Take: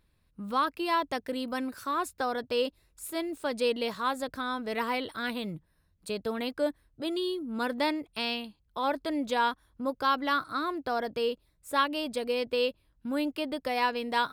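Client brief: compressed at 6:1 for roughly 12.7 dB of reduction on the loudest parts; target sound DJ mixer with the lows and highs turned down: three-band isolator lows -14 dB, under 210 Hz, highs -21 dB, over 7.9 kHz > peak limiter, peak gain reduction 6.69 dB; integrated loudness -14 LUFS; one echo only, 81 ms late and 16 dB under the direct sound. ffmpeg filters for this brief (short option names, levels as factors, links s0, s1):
-filter_complex "[0:a]acompressor=threshold=0.0178:ratio=6,acrossover=split=210 7900:gain=0.2 1 0.0891[s0][s1][s2];[s0][s1][s2]amix=inputs=3:normalize=0,aecho=1:1:81:0.158,volume=21.1,alimiter=limit=0.794:level=0:latency=1"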